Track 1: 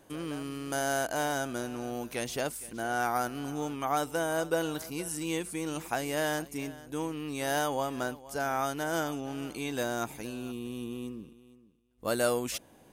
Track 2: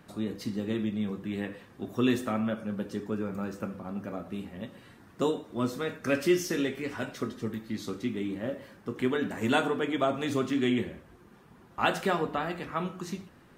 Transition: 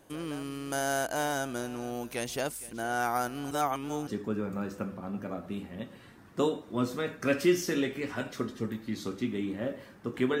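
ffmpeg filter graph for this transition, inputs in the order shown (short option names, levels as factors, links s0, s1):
-filter_complex "[0:a]apad=whole_dur=10.4,atrim=end=10.4,asplit=2[s0][s1];[s0]atrim=end=3.512[s2];[s1]atrim=start=3.508:end=4.072,asetpts=PTS-STARTPTS,areverse[s3];[1:a]atrim=start=2.888:end=9.22[s4];[s2][s3]acrossfade=d=0.004:c1=hsin:c2=hsin[s5];[s5][s4]acrossfade=d=0.004:c1=hsin:c2=hsin"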